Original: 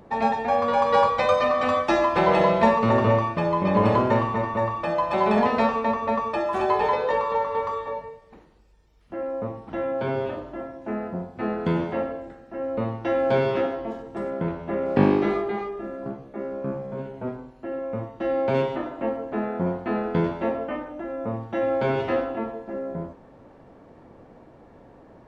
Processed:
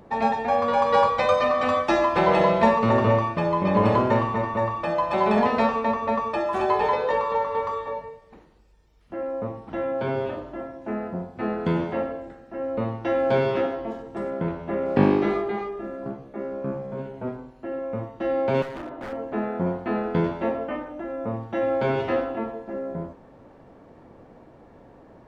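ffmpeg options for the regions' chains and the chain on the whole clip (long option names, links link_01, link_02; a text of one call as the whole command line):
ffmpeg -i in.wav -filter_complex "[0:a]asettb=1/sr,asplit=3[link_01][link_02][link_03];[link_01]atrim=end=18.624[link_04];[link_02]atrim=start=18.62:end=19.13,asetpts=PTS-STARTPTS,afade=type=in:duration=0.004:curve=qsin,afade=type=out:start_time=0.506:duration=0.004:curve=qsin,lowpass=frequency=2100:poles=1,acompressor=threshold=-33dB:ratio=1.5:attack=3.2:release=140:knee=1:detection=peak,aeval=exprs='0.0355*(abs(mod(val(0)/0.0355+3,4)-2)-1)':channel_layout=same[link_05];[link_03]atrim=start=19.126[link_06];[link_04][link_05]acrossfade=duration=0.004:curve1=hsin:curve2=qsin[link_07];[link_07][link_06]acrossfade=duration=0.004:curve1=qsin:curve2=hsin" out.wav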